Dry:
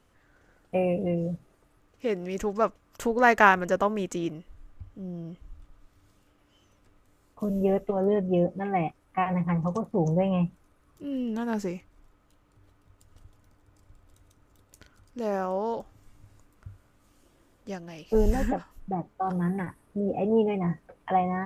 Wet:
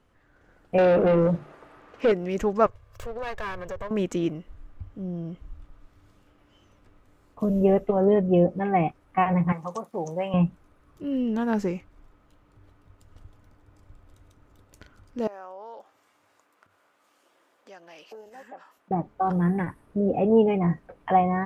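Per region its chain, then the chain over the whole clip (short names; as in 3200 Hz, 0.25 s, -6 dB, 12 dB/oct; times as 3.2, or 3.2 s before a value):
0.78–2.12 notches 50/100/150/200/250/300/350/400 Hz + overdrive pedal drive 23 dB, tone 1600 Hz, clips at -16 dBFS
2.66–3.91 minimum comb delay 1.8 ms + resonant low shelf 140 Hz +8 dB, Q 3 + compressor 3:1, threshold -39 dBFS
9.52–10.34 HPF 1100 Hz 6 dB/oct + high shelf 5900 Hz +11 dB
15.27–18.91 compressor 4:1, threshold -41 dBFS + HPF 590 Hz
whole clip: bell 7800 Hz -2 dB 1.4 oct; AGC gain up to 4.5 dB; high shelf 5100 Hz -8 dB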